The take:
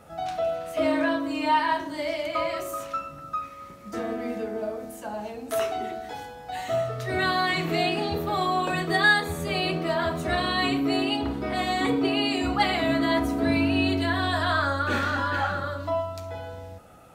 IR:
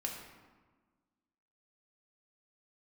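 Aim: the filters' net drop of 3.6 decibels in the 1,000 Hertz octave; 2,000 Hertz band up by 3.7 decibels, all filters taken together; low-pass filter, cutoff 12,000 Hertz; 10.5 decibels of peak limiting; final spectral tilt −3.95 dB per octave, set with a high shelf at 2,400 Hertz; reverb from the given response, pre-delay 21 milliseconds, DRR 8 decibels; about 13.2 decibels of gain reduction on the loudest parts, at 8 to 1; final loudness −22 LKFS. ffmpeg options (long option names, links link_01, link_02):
-filter_complex "[0:a]lowpass=12000,equalizer=frequency=1000:width_type=o:gain=-7.5,equalizer=frequency=2000:width_type=o:gain=4,highshelf=frequency=2400:gain=7,acompressor=threshold=-26dB:ratio=8,alimiter=level_in=1.5dB:limit=-24dB:level=0:latency=1,volume=-1.5dB,asplit=2[link_01][link_02];[1:a]atrim=start_sample=2205,adelay=21[link_03];[link_02][link_03]afir=irnorm=-1:irlink=0,volume=-9dB[link_04];[link_01][link_04]amix=inputs=2:normalize=0,volume=11dB"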